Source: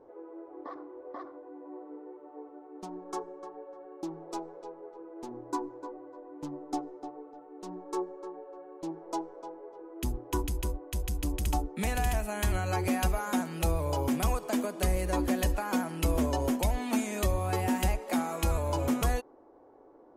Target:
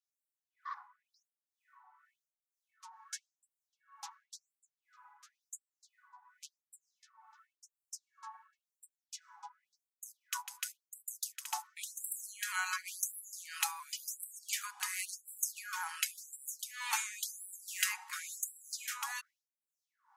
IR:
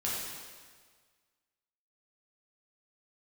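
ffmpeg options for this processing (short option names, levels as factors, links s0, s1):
-filter_complex "[0:a]equalizer=f=630:t=o:w=0.67:g=-4,equalizer=f=1600:t=o:w=0.67:g=3,equalizer=f=6300:t=o:w=0.67:g=4,acrossover=split=750[s0][s1];[s0]aeval=exprs='val(0)*(1-0.7/2+0.7/2*cos(2*PI*2.1*n/s))':c=same[s2];[s1]aeval=exprs='val(0)*(1-0.7/2-0.7/2*cos(2*PI*2.1*n/s))':c=same[s3];[s2][s3]amix=inputs=2:normalize=0,afftfilt=real='re*gte(b*sr/1024,760*pow(7600/760,0.5+0.5*sin(2*PI*0.93*pts/sr)))':imag='im*gte(b*sr/1024,760*pow(7600/760,0.5+0.5*sin(2*PI*0.93*pts/sr)))':win_size=1024:overlap=0.75,volume=1.58"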